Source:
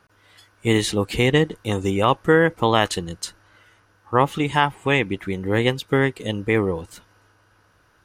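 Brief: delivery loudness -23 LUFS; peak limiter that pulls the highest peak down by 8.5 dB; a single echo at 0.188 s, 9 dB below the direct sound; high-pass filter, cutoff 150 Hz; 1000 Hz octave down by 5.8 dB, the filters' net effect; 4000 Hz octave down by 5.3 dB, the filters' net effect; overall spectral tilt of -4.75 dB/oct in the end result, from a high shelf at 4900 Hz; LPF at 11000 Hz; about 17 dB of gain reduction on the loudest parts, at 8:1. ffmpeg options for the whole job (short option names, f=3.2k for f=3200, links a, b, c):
-af "highpass=150,lowpass=11k,equalizer=f=1k:t=o:g=-7,equalizer=f=4k:t=o:g=-9,highshelf=f=4.9k:g=4,acompressor=threshold=-31dB:ratio=8,alimiter=level_in=2.5dB:limit=-24dB:level=0:latency=1,volume=-2.5dB,aecho=1:1:188:0.355,volume=16dB"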